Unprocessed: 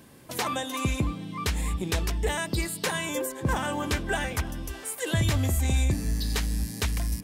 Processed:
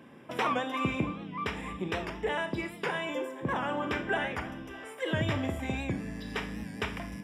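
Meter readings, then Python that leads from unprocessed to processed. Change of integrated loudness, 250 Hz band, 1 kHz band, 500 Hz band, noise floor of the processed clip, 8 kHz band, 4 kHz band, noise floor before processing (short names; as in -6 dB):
-4.5 dB, -2.0 dB, -0.5 dB, -1.0 dB, -47 dBFS, -19.5 dB, -6.5 dB, -43 dBFS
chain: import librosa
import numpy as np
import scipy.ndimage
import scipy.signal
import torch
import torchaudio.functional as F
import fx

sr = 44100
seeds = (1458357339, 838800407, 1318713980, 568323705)

y = scipy.signal.sosfilt(scipy.signal.butter(2, 160.0, 'highpass', fs=sr, output='sos'), x)
y = fx.rider(y, sr, range_db=10, speed_s=2.0)
y = scipy.signal.savgol_filter(y, 25, 4, mode='constant')
y = fx.rev_schroeder(y, sr, rt60_s=0.47, comb_ms=26, drr_db=7.5)
y = fx.record_warp(y, sr, rpm=78.0, depth_cents=100.0)
y = F.gain(torch.from_numpy(y), -2.0).numpy()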